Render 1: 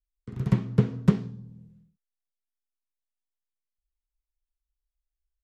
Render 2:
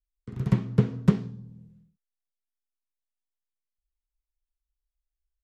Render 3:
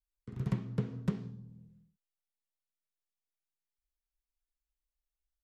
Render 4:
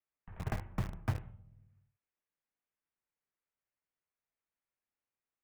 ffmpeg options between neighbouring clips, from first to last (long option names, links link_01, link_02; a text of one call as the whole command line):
ffmpeg -i in.wav -af anull out.wav
ffmpeg -i in.wav -af "alimiter=limit=-13.5dB:level=0:latency=1:release=186,volume=-6dB" out.wav
ffmpeg -i in.wav -filter_complex "[0:a]highpass=frequency=250:width_type=q:width=0.5412,highpass=frequency=250:width_type=q:width=1.307,lowpass=frequency=2800:width_type=q:width=0.5176,lowpass=frequency=2800:width_type=q:width=0.7071,lowpass=frequency=2800:width_type=q:width=1.932,afreqshift=-300,asplit=2[link_01][link_02];[link_02]acrusher=bits=6:mix=0:aa=0.000001,volume=-7dB[link_03];[link_01][link_03]amix=inputs=2:normalize=0,volume=4.5dB" out.wav